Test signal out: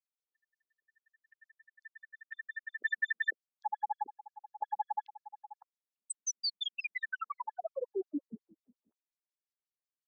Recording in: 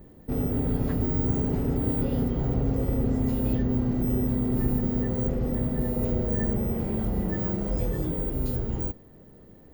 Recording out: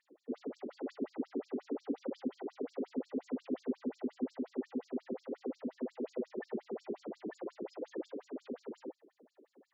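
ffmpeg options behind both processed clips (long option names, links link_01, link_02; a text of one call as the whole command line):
ffmpeg -i in.wav -af "aeval=exprs='0.237*(cos(1*acos(clip(val(0)/0.237,-1,1)))-cos(1*PI/2))+0.00841*(cos(4*acos(clip(val(0)/0.237,-1,1)))-cos(4*PI/2))':channel_layout=same,afftfilt=real='re*between(b*sr/1024,300*pow(5900/300,0.5+0.5*sin(2*PI*5.6*pts/sr))/1.41,300*pow(5900/300,0.5+0.5*sin(2*PI*5.6*pts/sr))*1.41)':imag='im*between(b*sr/1024,300*pow(5900/300,0.5+0.5*sin(2*PI*5.6*pts/sr))/1.41,300*pow(5900/300,0.5+0.5*sin(2*PI*5.6*pts/sr))*1.41)':win_size=1024:overlap=0.75,volume=-2dB" out.wav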